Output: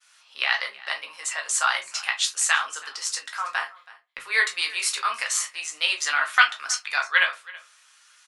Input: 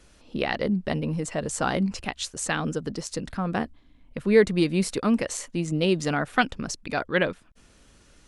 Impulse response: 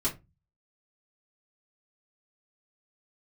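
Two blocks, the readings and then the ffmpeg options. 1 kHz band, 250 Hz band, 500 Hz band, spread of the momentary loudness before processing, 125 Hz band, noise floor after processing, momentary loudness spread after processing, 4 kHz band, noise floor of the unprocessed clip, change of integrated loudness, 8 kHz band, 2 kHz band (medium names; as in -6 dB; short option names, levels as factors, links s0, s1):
+3.5 dB, under -35 dB, -17.5 dB, 10 LU, under -40 dB, -58 dBFS, 11 LU, +8.5 dB, -57 dBFS, +2.5 dB, +8.5 dB, +8.5 dB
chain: -filter_complex "[0:a]highpass=f=1100:w=0.5412,highpass=f=1100:w=1.3066,agate=range=0.0224:threshold=0.00141:ratio=3:detection=peak,aecho=1:1:7.4:0.32,aecho=1:1:326:0.0891,asplit=2[s0][s1];[1:a]atrim=start_sample=2205,adelay=13[s2];[s1][s2]afir=irnorm=-1:irlink=0,volume=0.355[s3];[s0][s3]amix=inputs=2:normalize=0,volume=2.11"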